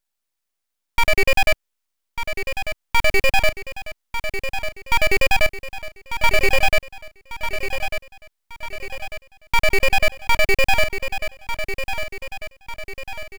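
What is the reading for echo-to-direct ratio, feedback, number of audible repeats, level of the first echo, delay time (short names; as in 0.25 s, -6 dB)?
-8.0 dB, 48%, 5, -9.0 dB, 1.196 s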